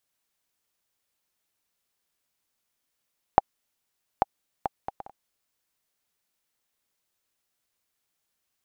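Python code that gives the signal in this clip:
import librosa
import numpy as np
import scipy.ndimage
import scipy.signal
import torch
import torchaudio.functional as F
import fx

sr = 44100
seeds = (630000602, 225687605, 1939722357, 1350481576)

y = fx.bouncing_ball(sr, first_gap_s=0.84, ratio=0.52, hz=794.0, decay_ms=24.0, level_db=-1.5)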